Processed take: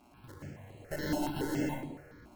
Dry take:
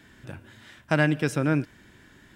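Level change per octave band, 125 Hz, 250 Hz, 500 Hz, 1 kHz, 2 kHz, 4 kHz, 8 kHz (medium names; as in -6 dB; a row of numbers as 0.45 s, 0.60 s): -13.5 dB, -8.0 dB, -9.5 dB, -7.0 dB, -14.5 dB, -6.5 dB, -4.0 dB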